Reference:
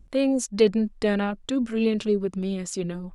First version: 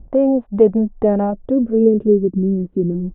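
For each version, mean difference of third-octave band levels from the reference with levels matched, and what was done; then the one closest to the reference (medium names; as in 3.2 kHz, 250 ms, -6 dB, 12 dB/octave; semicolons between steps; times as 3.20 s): 8.0 dB: bass shelf 440 Hz +4.5 dB; in parallel at +2 dB: compression, threshold -29 dBFS, peak gain reduction 17 dB; on the sum: low-pass sweep 750 Hz -> 320 Hz, 1.19–2.30 s; resampled via 8 kHz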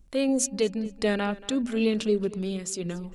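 3.5 dB: de-hum 49.8 Hz, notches 5; random-step tremolo; treble shelf 3.6 kHz +7.5 dB; tape echo 229 ms, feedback 47%, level -17.5 dB, low-pass 5.1 kHz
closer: second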